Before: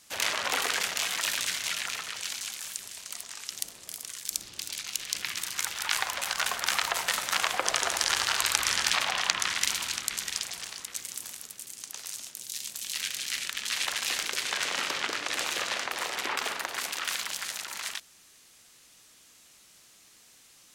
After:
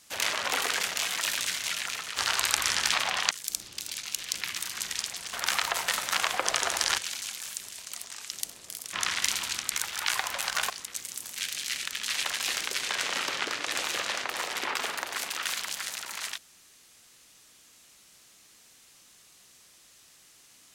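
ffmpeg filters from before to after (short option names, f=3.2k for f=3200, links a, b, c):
-filter_complex "[0:a]asplit=10[a][b][c][d][e][f][g][h][i][j];[a]atrim=end=2.172[k];[b]atrim=start=8.178:end=9.322[l];[c]atrim=start=4.118:end=5.592[m];[d]atrim=start=10.148:end=10.702[n];[e]atrim=start=6.528:end=8.182[o];[f]atrim=start=2.168:end=4.122[p];[g]atrim=start=9.318:end=10.152[q];[h]atrim=start=5.588:end=6.532[r];[i]atrim=start=10.698:end=11.362[s];[j]atrim=start=12.978[t];[k][l]acrossfade=d=0.004:c1=hsin:c2=hsin[u];[u][m]acrossfade=d=0.004:c1=hsin:c2=hsin[v];[v][n]acrossfade=d=0.004:c1=hsin:c2=hsin[w];[w][o]acrossfade=d=0.004:c1=hsin:c2=hsin[x];[x][p]acrossfade=d=0.004:c1=hsin:c2=hsin[y];[y][q]acrossfade=d=0.004:c1=hsin:c2=hsin[z];[z][r]acrossfade=d=0.004:c1=hsin:c2=hsin[aa];[aa][s]acrossfade=d=0.004:c1=hsin:c2=hsin[ab];[ab][t]acrossfade=d=0.004:c1=hsin:c2=hsin"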